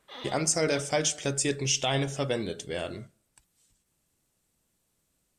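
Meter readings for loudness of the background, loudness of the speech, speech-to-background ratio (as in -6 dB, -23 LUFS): -45.0 LUFS, -28.5 LUFS, 16.5 dB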